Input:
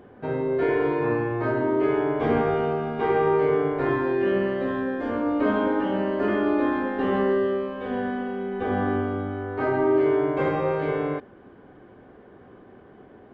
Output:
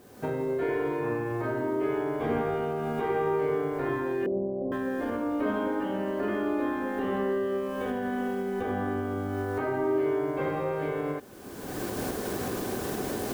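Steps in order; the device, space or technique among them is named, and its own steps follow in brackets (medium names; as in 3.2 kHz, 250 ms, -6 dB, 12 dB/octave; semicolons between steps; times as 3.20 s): cheap recorder with automatic gain (white noise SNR 33 dB; recorder AGC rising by 31 dB/s); 4.26–4.72 s: steep low-pass 810 Hz 48 dB/octave; trim -6 dB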